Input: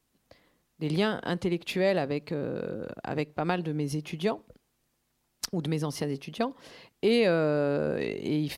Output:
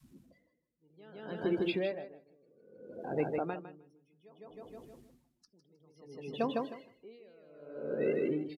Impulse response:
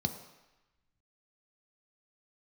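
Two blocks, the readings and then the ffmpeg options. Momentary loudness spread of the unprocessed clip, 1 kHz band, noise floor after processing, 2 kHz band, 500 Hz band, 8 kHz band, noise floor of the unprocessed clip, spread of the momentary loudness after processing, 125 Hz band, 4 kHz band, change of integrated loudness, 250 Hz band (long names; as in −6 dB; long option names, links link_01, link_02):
10 LU, −8.0 dB, −77 dBFS, −11.0 dB, −8.0 dB, below −25 dB, −75 dBFS, 22 LU, −14.5 dB, −13.0 dB, −6.0 dB, −8.5 dB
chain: -filter_complex "[0:a]aeval=exprs='val(0)+0.5*0.0237*sgn(val(0))':channel_layout=same,flanger=delay=8.7:depth=7.8:regen=-78:speed=0.89:shape=triangular,adynamicequalizer=threshold=0.01:dfrequency=420:dqfactor=1.9:tfrequency=420:tqfactor=1.9:attack=5:release=100:ratio=0.375:range=2:mode=boostabove:tftype=bell,afftdn=noise_reduction=29:noise_floor=-36,highpass=frequency=200:poles=1,asplit=2[link_01][link_02];[link_02]aecho=0:1:156|312|468|624|780:0.708|0.262|0.0969|0.0359|0.0133[link_03];[link_01][link_03]amix=inputs=2:normalize=0,aresample=32000,aresample=44100,aeval=exprs='val(0)*pow(10,-35*(0.5-0.5*cos(2*PI*0.61*n/s))/20)':channel_layout=same"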